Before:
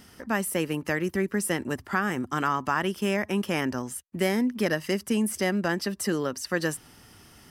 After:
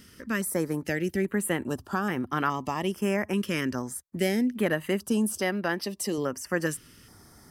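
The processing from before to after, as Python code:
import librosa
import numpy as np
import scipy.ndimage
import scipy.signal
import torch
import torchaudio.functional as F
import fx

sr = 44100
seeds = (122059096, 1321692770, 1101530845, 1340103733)

y = fx.low_shelf(x, sr, hz=190.0, db=-9.5, at=(5.38, 6.18))
y = fx.filter_held_notch(y, sr, hz=2.4, low_hz=790.0, high_hz=7300.0)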